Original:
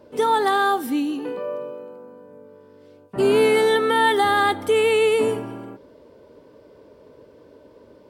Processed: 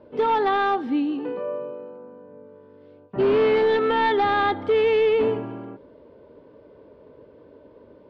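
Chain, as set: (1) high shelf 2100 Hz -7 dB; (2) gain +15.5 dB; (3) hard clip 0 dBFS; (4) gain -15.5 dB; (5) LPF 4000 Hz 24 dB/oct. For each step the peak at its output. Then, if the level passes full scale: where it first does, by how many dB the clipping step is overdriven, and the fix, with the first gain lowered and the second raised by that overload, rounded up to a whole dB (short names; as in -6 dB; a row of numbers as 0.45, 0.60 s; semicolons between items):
-8.0, +7.5, 0.0, -15.5, -14.5 dBFS; step 2, 7.5 dB; step 2 +7.5 dB, step 4 -7.5 dB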